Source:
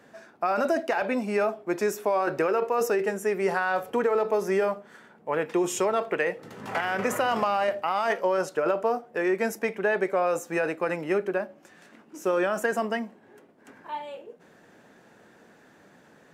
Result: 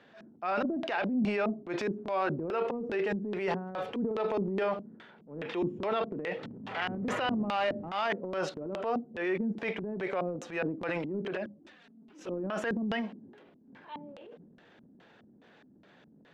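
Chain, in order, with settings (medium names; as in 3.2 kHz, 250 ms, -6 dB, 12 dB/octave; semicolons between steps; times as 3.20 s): 7.31–8.02 s: jump at every zero crossing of -36 dBFS; LFO low-pass square 2.4 Hz 240–3500 Hz; 11.34–12.30 s: touch-sensitive flanger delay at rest 5.5 ms, full sweep at -22 dBFS; transient shaper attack -7 dB, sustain +8 dB; trim -5 dB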